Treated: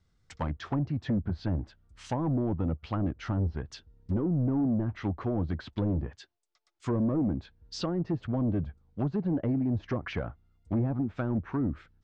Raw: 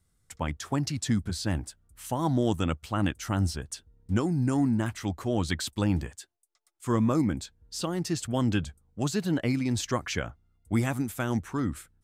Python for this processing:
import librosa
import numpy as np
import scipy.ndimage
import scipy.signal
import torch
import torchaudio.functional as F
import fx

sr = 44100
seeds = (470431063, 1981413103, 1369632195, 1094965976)

y = scipy.signal.sosfilt(scipy.signal.butter(4, 5600.0, 'lowpass', fs=sr, output='sos'), x)
y = np.clip(y, -10.0 ** (-25.0 / 20.0), 10.0 ** (-25.0 / 20.0))
y = fx.env_lowpass_down(y, sr, base_hz=600.0, full_db=-26.5)
y = y * librosa.db_to_amplitude(1.5)